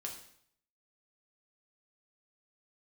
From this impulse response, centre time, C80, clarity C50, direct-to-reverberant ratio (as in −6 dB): 25 ms, 10.0 dB, 7.0 dB, −0.5 dB